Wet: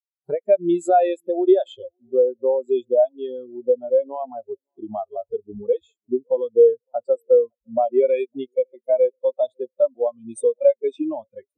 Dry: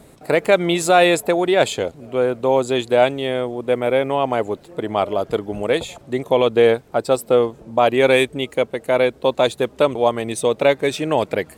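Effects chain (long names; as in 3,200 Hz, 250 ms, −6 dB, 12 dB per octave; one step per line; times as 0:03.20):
downward compressor 4 to 1, threshold −25 dBFS, peak gain reduction 13.5 dB
high-shelf EQ 7,100 Hz +6.5 dB
noise reduction from a noise print of the clip's start 22 dB
0:01.11–0:01.96: parametric band 3,300 Hz +5 dB 0.54 octaves
tape delay 558 ms, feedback 47%, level −21 dB
every bin expanded away from the loudest bin 2.5 to 1
level +7 dB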